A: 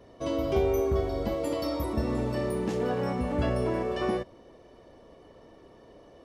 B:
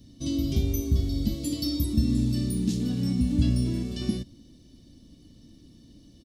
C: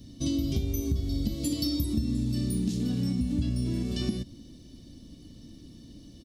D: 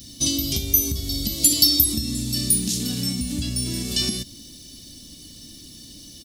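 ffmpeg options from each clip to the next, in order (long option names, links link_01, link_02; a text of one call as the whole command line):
ffmpeg -i in.wav -af "firequalizer=gain_entry='entry(280,0);entry(410,-23);entry(930,-29);entry(3800,2)':delay=0.05:min_phase=1,volume=7dB" out.wav
ffmpeg -i in.wav -af "acompressor=threshold=-29dB:ratio=6,volume=4dB" out.wav
ffmpeg -i in.wav -af "crystalizer=i=10:c=0" out.wav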